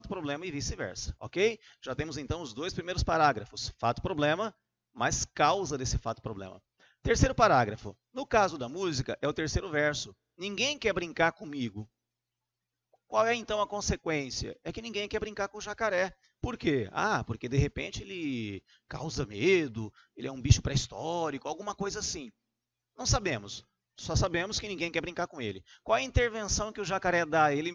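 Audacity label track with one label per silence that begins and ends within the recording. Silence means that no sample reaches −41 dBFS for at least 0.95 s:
11.830000	13.120000	silence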